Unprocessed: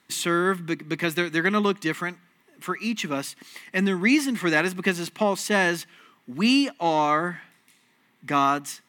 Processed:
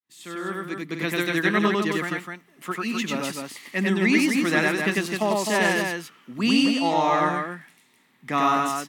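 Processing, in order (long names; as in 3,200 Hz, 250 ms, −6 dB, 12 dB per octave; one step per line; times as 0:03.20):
fade in at the beginning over 1.15 s
loudspeakers that aren't time-aligned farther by 33 metres −1 dB, 88 metres −5 dB
level −2 dB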